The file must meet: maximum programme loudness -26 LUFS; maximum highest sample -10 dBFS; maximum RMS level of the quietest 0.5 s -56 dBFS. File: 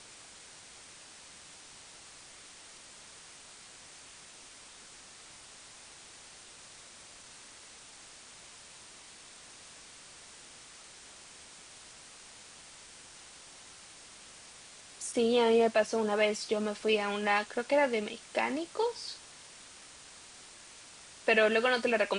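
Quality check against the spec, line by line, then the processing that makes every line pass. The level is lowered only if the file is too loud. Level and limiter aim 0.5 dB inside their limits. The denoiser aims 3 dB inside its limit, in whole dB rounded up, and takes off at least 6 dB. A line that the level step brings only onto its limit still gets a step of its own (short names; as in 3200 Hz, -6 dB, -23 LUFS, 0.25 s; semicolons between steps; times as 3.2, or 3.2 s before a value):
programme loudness -29.5 LUFS: OK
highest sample -13.5 dBFS: OK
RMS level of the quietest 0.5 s -52 dBFS: fail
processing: denoiser 7 dB, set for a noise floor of -52 dBFS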